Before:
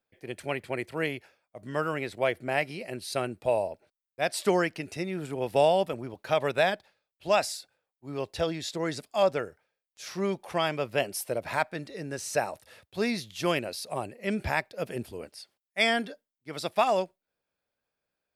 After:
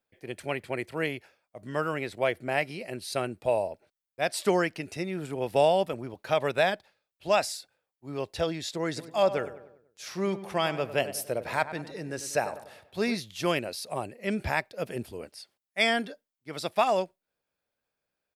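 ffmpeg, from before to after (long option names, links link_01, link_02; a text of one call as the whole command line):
ffmpeg -i in.wav -filter_complex "[0:a]asplit=3[link_01][link_02][link_03];[link_01]afade=type=out:start_time=8.96:duration=0.02[link_04];[link_02]asplit=2[link_05][link_06];[link_06]adelay=97,lowpass=frequency=2000:poles=1,volume=-12.5dB,asplit=2[link_07][link_08];[link_08]adelay=97,lowpass=frequency=2000:poles=1,volume=0.5,asplit=2[link_09][link_10];[link_10]adelay=97,lowpass=frequency=2000:poles=1,volume=0.5,asplit=2[link_11][link_12];[link_12]adelay=97,lowpass=frequency=2000:poles=1,volume=0.5,asplit=2[link_13][link_14];[link_14]adelay=97,lowpass=frequency=2000:poles=1,volume=0.5[link_15];[link_05][link_07][link_09][link_11][link_13][link_15]amix=inputs=6:normalize=0,afade=type=in:start_time=8.96:duration=0.02,afade=type=out:start_time=13.14:duration=0.02[link_16];[link_03]afade=type=in:start_time=13.14:duration=0.02[link_17];[link_04][link_16][link_17]amix=inputs=3:normalize=0" out.wav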